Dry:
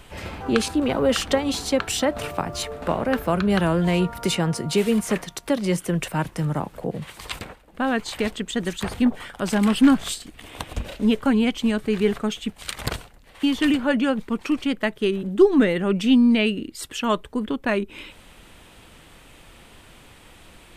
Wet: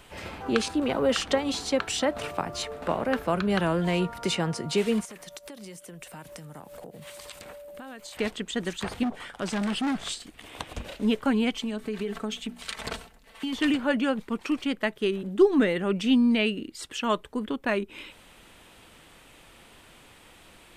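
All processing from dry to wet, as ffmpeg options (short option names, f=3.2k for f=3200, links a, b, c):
-filter_complex "[0:a]asettb=1/sr,asplit=3[a][b][c];[a]atrim=end=5.054[d];[b]atrim=start=5.05:end=8.17,asetpts=PTS-STARTPTS,afade=t=in:d=0.004:c=qsin,afade=t=out:st=3.116:d=0.004:c=qsin,aemphasis=mode=production:type=50fm,aeval=exprs='val(0)+0.0126*sin(2*PI*580*n/s)':c=same,acompressor=threshold=-34dB:ratio=16:attack=3.2:release=140:knee=1:detection=peak[e];[c]atrim=start=8.166[f];[d][e]acrossfade=d=0.004:c1=hsin:c2=qsin[g];[g][f]acrossfade=d=0.004:c1=qsin:c2=hsin,asettb=1/sr,asplit=3[h][i][j];[h]atrim=end=9.034[k];[i]atrim=start=9.03:end=10.19,asetpts=PTS-STARTPTS,afade=t=in:d=0.004:c=qsin,afade=t=out:st=1.156:d=0.004:c=qsin,lowpass=11k,volume=20dB,asoftclip=hard,volume=-20dB[l];[j]atrim=start=10.186[m];[k][l]acrossfade=d=0.004:c1=hsin:c2=qsin[n];[n][m]acrossfade=d=0.004:c1=qsin:c2=hsin,asettb=1/sr,asplit=3[o][p][q];[o]atrim=end=11.534[r];[p]atrim=start=11.53:end=13.53,asetpts=PTS-STARTPTS,afade=t=in:d=0.004:c=qsin,afade=t=out:st=1.996:d=0.004:c=qsin,bandreject=f=60:t=h:w=6,bandreject=f=120:t=h:w=6,bandreject=f=180:t=h:w=6,bandreject=f=240:t=h:w=6,bandreject=f=300:t=h:w=6,bandreject=f=360:t=h:w=6,aecho=1:1:4.5:0.57,atrim=end_sample=88200,acompressor=threshold=-22dB:ratio=10:attack=3.2:release=140:knee=1:detection=peak[s];[q]atrim=start=13.526[t];[r][s]acrossfade=d=0.004:c1=hsin:c2=qsin[u];[u][t]acrossfade=d=0.004:c1=qsin:c2=hsin,acrossover=split=9200[v][w];[w]acompressor=threshold=-55dB:ratio=4:attack=1:release=60[x];[v][x]amix=inputs=2:normalize=0,lowshelf=f=160:g=-7,volume=-3dB"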